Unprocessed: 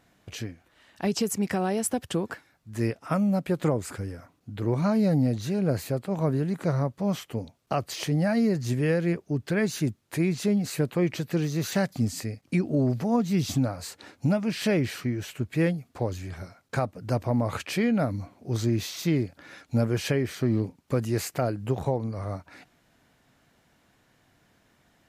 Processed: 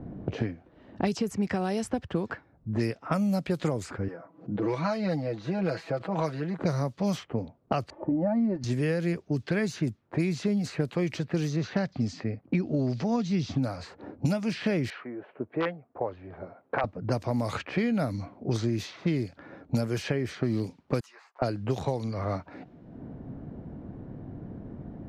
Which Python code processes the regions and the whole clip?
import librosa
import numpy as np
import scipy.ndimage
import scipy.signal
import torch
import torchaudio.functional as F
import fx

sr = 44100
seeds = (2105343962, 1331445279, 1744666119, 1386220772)

y = fx.chain(x, sr, fx.highpass(hz=840.0, slope=6),
    fx.comb(ms=6.1, depth=0.77),
    fx.pre_swell(db_per_s=110.0), at=(4.08, 6.59))
y = fx.chain(y, sr, fx.cheby1_lowpass(hz=930.0, order=3),
    fx.comb(ms=3.4, depth=0.85), at=(7.9, 8.64))
y = fx.chain(y, sr, fx.lowpass(hz=6400.0, slope=24),
    fx.high_shelf(hz=3900.0, db=-12.0), at=(11.56, 13.63))
y = fx.chain(y, sr, fx.overflow_wrap(gain_db=13.5),
    fx.bandpass_edges(low_hz=630.0, high_hz=3500.0),
    fx.air_absorb(metres=140.0), at=(14.9, 16.84))
y = fx.chain(y, sr, fx.ladder_highpass(hz=910.0, resonance_pct=55),
    fx.ensemble(), at=(21.0, 21.42))
y = fx.env_lowpass(y, sr, base_hz=330.0, full_db=-21.5)
y = fx.peak_eq(y, sr, hz=5200.0, db=4.5, octaves=1.2)
y = fx.band_squash(y, sr, depth_pct=100)
y = y * 10.0 ** (-2.5 / 20.0)